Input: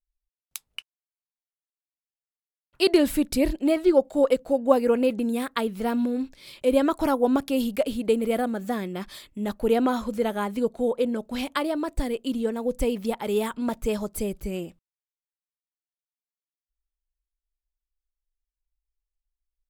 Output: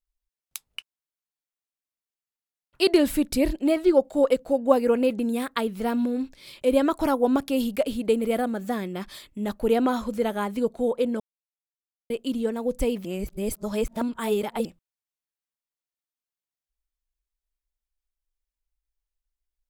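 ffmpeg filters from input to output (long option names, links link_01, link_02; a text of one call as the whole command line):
ffmpeg -i in.wav -filter_complex "[0:a]asplit=5[link_01][link_02][link_03][link_04][link_05];[link_01]atrim=end=11.2,asetpts=PTS-STARTPTS,afade=type=out:start_time=11.196:duration=0.004:curve=hsin[link_06];[link_02]atrim=start=11.2:end=12.1,asetpts=PTS-STARTPTS,volume=0[link_07];[link_03]atrim=start=12.1:end=13.052,asetpts=PTS-STARTPTS,afade=type=in:duration=0.004:curve=hsin[link_08];[link_04]atrim=start=13.048:end=14.652,asetpts=PTS-STARTPTS,areverse[link_09];[link_05]atrim=start=14.648[link_10];[link_06][link_07][link_08]concat=n=3:v=0:a=1[link_11];[link_11][link_09]acrossfade=duration=0.004:curve1=hsin:curve2=hsin[link_12];[link_12][link_10]acrossfade=duration=0.004:curve1=hsin:curve2=hsin" out.wav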